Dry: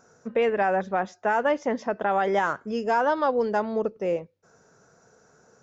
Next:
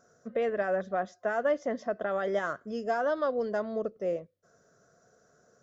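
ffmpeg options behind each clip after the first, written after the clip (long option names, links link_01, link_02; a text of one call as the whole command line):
ffmpeg -i in.wav -af "superequalizer=8b=1.58:9b=0.355:12b=0.501,volume=-6.5dB" out.wav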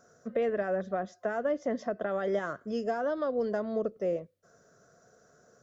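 ffmpeg -i in.wav -filter_complex "[0:a]acrossover=split=450[link_01][link_02];[link_02]acompressor=threshold=-35dB:ratio=5[link_03];[link_01][link_03]amix=inputs=2:normalize=0,volume=2.5dB" out.wav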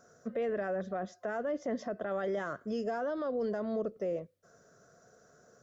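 ffmpeg -i in.wav -af "alimiter=level_in=2.5dB:limit=-24dB:level=0:latency=1:release=21,volume=-2.5dB" out.wav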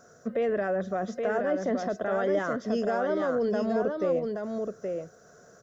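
ffmpeg -i in.wav -af "aecho=1:1:824:0.596,volume=6dB" out.wav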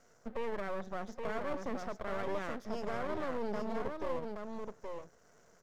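ffmpeg -i in.wav -af "aeval=exprs='max(val(0),0)':channel_layout=same,volume=-6dB" out.wav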